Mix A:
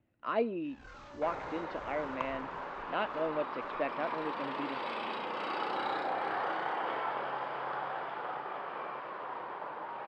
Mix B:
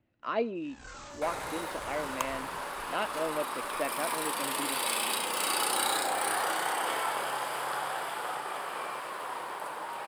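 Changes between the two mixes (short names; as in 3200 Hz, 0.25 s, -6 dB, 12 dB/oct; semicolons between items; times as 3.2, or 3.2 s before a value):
first sound +3.5 dB; second sound: remove tape spacing loss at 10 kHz 22 dB; master: remove air absorption 200 m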